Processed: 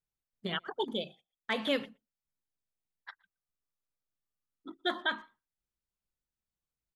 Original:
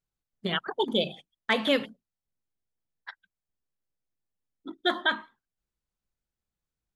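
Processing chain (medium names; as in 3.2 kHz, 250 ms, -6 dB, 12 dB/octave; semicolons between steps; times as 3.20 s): 3.09–4.77 s: peaking EQ 1.2 kHz +9.5 dB 0.21 oct; speakerphone echo 120 ms, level -28 dB; 0.85–1.59 s: dip -13.5 dB, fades 0.32 s; trim -6 dB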